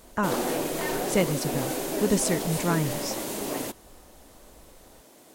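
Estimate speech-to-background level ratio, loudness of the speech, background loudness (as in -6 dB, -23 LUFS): 1.5 dB, -28.5 LUFS, -30.0 LUFS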